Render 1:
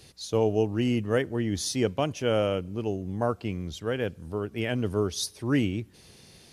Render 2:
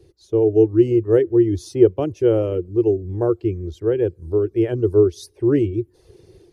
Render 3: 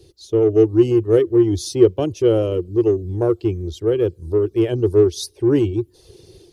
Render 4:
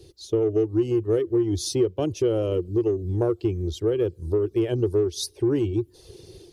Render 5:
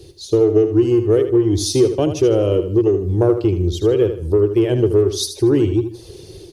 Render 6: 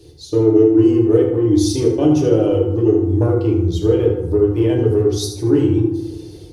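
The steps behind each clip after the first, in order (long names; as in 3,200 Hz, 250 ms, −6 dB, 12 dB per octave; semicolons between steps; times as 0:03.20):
reverb reduction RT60 0.6 s; drawn EQ curve 100 Hz 0 dB, 240 Hz −17 dB, 350 Hz +9 dB, 630 Hz −10 dB, 2,900 Hz −19 dB; automatic gain control gain up to 6.5 dB; level +4.5 dB
high shelf with overshoot 2,600 Hz +7 dB, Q 1.5; in parallel at −10.5 dB: soft clipping −19.5 dBFS, distortion −7 dB
downward compressor 4 to 1, threshold −20 dBFS, peak gain reduction 11.5 dB
repeating echo 78 ms, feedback 35%, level −9.5 dB; level +7.5 dB
feedback delay network reverb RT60 0.88 s, low-frequency decay 1.6×, high-frequency decay 0.4×, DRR −2.5 dB; level −5.5 dB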